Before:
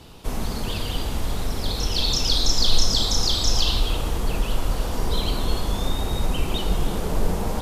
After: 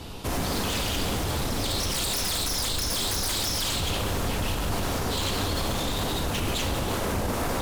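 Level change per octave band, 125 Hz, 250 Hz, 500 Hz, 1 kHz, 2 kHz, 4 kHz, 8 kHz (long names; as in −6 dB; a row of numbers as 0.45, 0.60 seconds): −2.5, −0.5, 0.0, +1.0, +3.5, −4.5, +0.5 decibels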